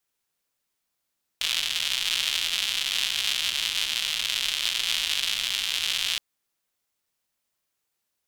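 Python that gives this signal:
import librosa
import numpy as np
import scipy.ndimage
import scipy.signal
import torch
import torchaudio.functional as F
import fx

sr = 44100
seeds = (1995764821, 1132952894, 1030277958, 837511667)

y = fx.rain(sr, seeds[0], length_s=4.77, drops_per_s=200.0, hz=3200.0, bed_db=-24.5)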